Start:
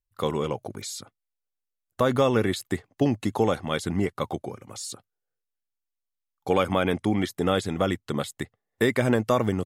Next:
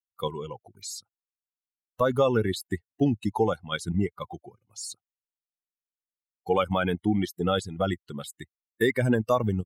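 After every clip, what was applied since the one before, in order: per-bin expansion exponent 2; dynamic EQ 2500 Hz, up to -5 dB, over -53 dBFS, Q 4.7; in parallel at +1 dB: level quantiser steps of 17 dB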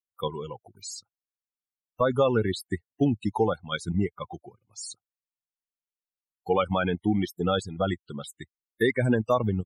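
loudest bins only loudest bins 64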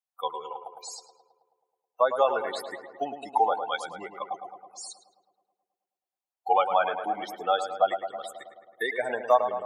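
resonant high-pass 740 Hz, resonance Q 4.3; darkening echo 0.107 s, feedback 69%, low-pass 2300 Hz, level -8.5 dB; gain -2.5 dB

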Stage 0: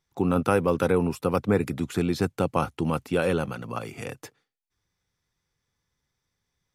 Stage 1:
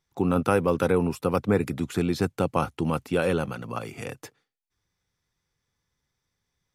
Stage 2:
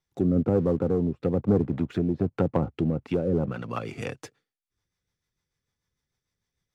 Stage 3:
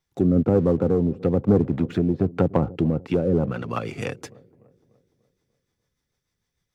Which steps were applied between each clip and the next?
nothing audible
treble ducked by the level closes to 450 Hz, closed at -20 dBFS; sample leveller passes 1; rotary speaker horn 1.1 Hz, later 6.7 Hz, at 2.8
dark delay 0.295 s, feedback 47%, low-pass 680 Hz, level -20.5 dB; gain +4 dB

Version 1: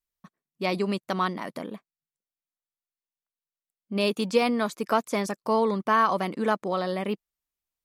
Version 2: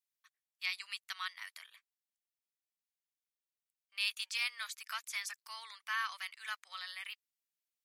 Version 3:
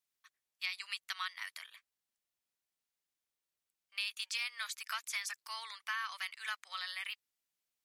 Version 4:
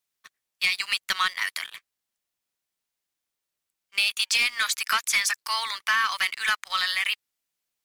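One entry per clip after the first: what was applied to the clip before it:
inverse Chebyshev high-pass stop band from 290 Hz, stop band 80 dB; gain -3 dB
high shelf 12000 Hz -3.5 dB; compressor 6:1, threshold -38 dBFS, peak gain reduction 9 dB; gain +4 dB
sample leveller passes 2; gain +9 dB

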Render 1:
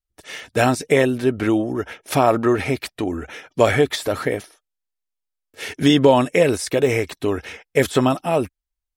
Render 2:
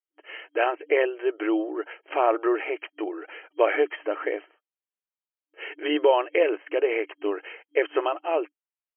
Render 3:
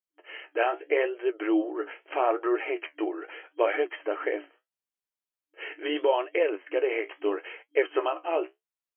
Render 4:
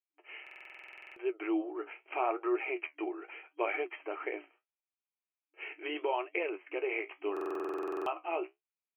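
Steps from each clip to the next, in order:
FFT band-pass 300–3200 Hz; gain -5 dB
in parallel at 0 dB: vocal rider within 5 dB 0.5 s; on the sum: flange 0.78 Hz, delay 7.9 ms, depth 9.9 ms, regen +55%; gain -4.5 dB
speaker cabinet 340–2900 Hz, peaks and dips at 360 Hz +6 dB, 520 Hz -7 dB, 800 Hz +4 dB, 1200 Hz +3 dB, 1700 Hz -6 dB, 2400 Hz +10 dB; stuck buffer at 0.42/7.32, samples 2048, times 15; gain -7.5 dB

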